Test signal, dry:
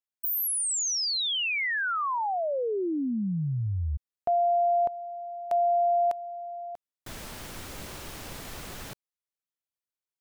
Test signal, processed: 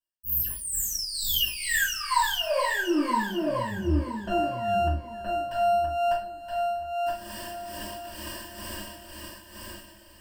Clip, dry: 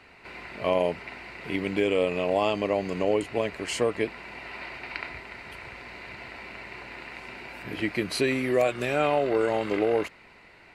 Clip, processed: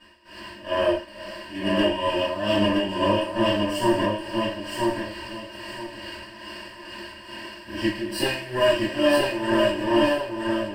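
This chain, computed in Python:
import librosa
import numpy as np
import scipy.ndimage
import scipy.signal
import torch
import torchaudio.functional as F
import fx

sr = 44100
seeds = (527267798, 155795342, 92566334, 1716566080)

p1 = fx.lower_of_two(x, sr, delay_ms=3.2)
p2 = fx.ripple_eq(p1, sr, per_octave=1.3, db=14)
p3 = fx.rev_double_slope(p2, sr, seeds[0], early_s=0.48, late_s=4.2, knee_db=-22, drr_db=-8.5)
p4 = p3 * (1.0 - 0.72 / 2.0 + 0.72 / 2.0 * np.cos(2.0 * np.pi * 2.3 * (np.arange(len(p3)) / sr)))
p5 = p4 + fx.echo_feedback(p4, sr, ms=971, feedback_pct=23, wet_db=-3, dry=0)
y = p5 * librosa.db_to_amplitude(-6.5)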